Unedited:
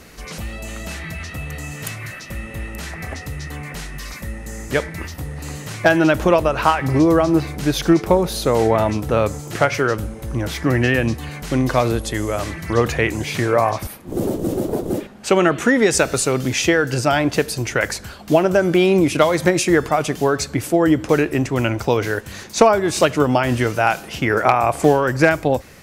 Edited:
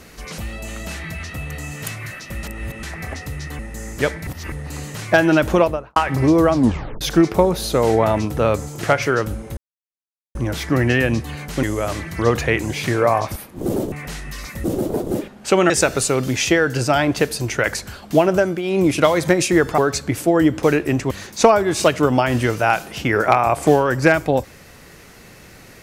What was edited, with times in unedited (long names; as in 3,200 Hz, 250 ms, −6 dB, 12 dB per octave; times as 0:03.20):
0:02.43–0:02.83: reverse
0:03.59–0:04.31: move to 0:14.43
0:04.99–0:05.24: reverse
0:06.28–0:06.68: fade out and dull
0:07.25: tape stop 0.48 s
0:10.29: splice in silence 0.78 s
0:11.57–0:12.14: remove
0:15.49–0:15.87: remove
0:18.54–0:19.04: duck −12 dB, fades 0.25 s
0:19.95–0:20.24: remove
0:21.57–0:22.28: remove